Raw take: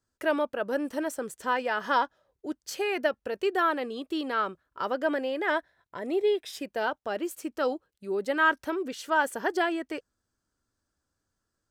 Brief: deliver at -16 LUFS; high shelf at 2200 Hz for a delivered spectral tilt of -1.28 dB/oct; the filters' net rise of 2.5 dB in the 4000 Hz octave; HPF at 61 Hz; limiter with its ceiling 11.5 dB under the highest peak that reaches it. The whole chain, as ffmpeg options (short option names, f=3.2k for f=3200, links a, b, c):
-af "highpass=61,highshelf=f=2.2k:g=-3,equalizer=f=4k:t=o:g=6.5,volume=18dB,alimiter=limit=-6dB:level=0:latency=1"